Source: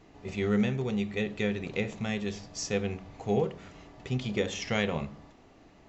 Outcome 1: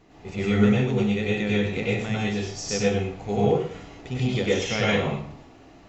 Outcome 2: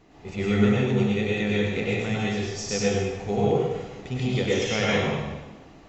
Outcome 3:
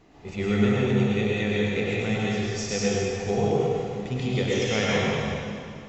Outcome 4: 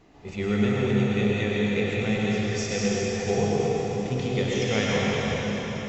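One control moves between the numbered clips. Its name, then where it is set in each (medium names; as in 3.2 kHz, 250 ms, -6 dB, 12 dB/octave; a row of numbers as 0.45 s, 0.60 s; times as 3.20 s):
plate-style reverb, RT60: 0.5 s, 1.1 s, 2.3 s, 5.2 s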